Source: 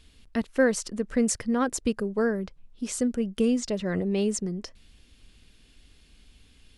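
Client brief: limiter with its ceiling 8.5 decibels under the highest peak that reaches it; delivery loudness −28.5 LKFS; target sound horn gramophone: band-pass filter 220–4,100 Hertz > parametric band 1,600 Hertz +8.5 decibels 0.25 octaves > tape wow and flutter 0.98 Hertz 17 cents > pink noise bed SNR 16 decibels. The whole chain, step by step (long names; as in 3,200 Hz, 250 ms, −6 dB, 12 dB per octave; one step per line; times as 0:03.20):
brickwall limiter −18.5 dBFS
band-pass filter 220–4,100 Hz
parametric band 1,600 Hz +8.5 dB 0.25 octaves
tape wow and flutter 0.98 Hz 17 cents
pink noise bed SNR 16 dB
level +2 dB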